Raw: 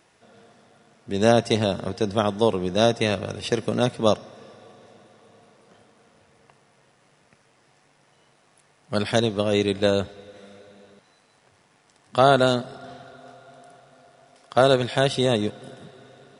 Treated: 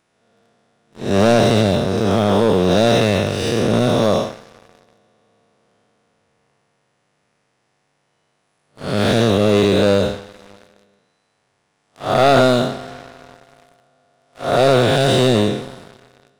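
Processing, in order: spectral blur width 219 ms; waveshaping leveller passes 3; trim +1 dB

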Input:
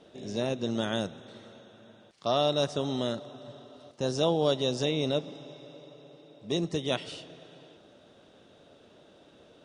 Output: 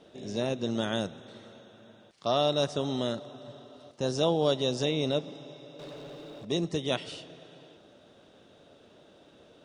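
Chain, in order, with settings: 5.79–6.45 s: waveshaping leveller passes 3

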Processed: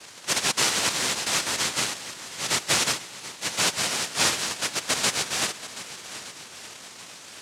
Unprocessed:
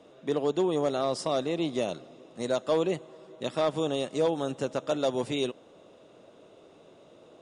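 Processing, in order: zero-crossing glitches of -25.5 dBFS; noise-vocoded speech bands 1; shuffle delay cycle 1216 ms, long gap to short 1.5:1, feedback 37%, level -15 dB; trim +2 dB

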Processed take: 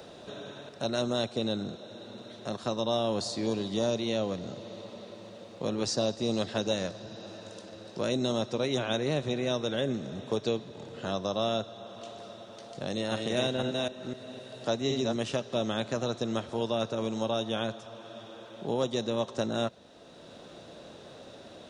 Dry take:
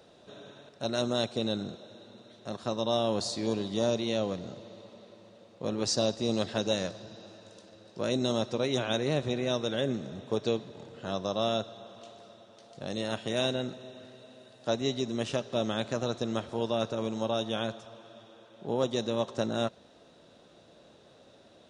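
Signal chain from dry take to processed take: 12.86–15.16 s: chunks repeated in reverse 255 ms, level -3 dB; three bands compressed up and down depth 40%

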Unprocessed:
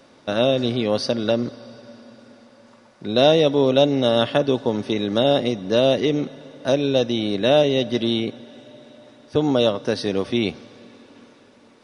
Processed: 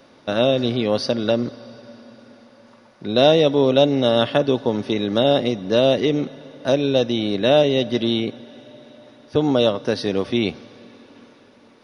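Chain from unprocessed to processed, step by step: peaking EQ 7.8 kHz -14.5 dB 0.27 oct; trim +1 dB

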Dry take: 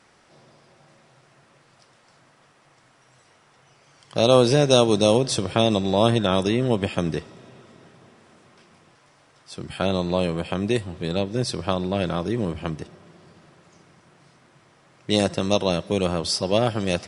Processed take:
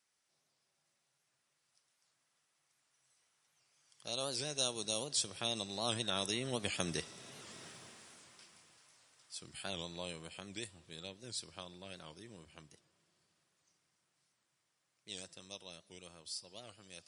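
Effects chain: Doppler pass-by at 7.65 s, 9 m/s, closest 3.1 m; pre-emphasis filter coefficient 0.9; warped record 78 rpm, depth 160 cents; trim +12 dB

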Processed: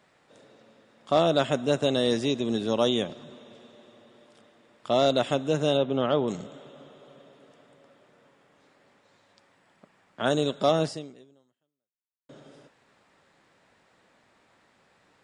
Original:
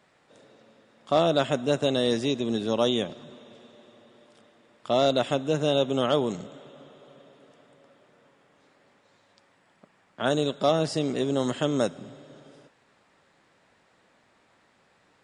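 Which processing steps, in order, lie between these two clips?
5.77–6.28 s: distance through air 240 m; 10.84–12.29 s: fade out exponential

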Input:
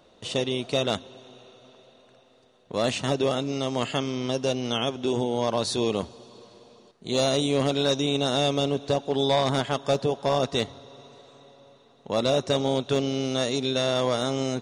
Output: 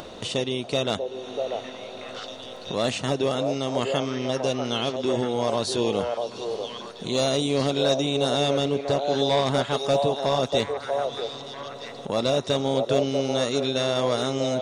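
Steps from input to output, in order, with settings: 1.06–2.75 s: doubling 19 ms -2.5 dB; upward compressor, threshold -26 dBFS; repeats whose band climbs or falls 641 ms, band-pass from 610 Hz, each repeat 1.4 oct, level -1 dB

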